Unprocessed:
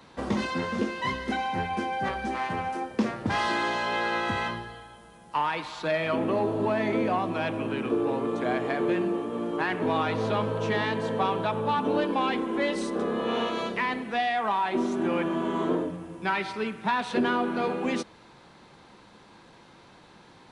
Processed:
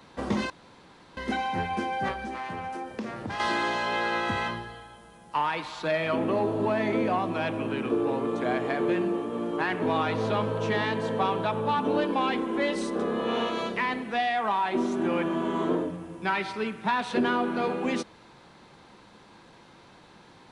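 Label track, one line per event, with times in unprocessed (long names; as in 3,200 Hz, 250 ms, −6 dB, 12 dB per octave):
0.500000	1.170000	fill with room tone
2.120000	3.400000	downward compressor 3 to 1, threshold −32 dBFS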